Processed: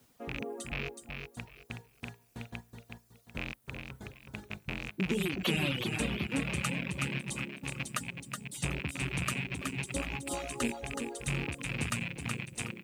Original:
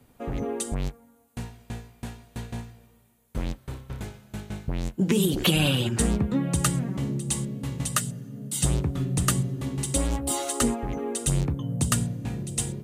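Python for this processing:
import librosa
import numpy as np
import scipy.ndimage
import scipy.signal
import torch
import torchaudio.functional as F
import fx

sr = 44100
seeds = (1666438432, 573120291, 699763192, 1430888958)

y = fx.rattle_buzz(x, sr, strikes_db=-27.0, level_db=-14.0)
y = fx.highpass(y, sr, hz=100.0, slope=6)
y = fx.high_shelf(y, sr, hz=5900.0, db=-8.5)
y = fx.quant_dither(y, sr, seeds[0], bits=10, dither='triangular')
y = fx.echo_feedback(y, sr, ms=372, feedback_pct=36, wet_db=-5.0)
y = fx.dereverb_blind(y, sr, rt60_s=0.87)
y = y * 10.0 ** (-7.5 / 20.0)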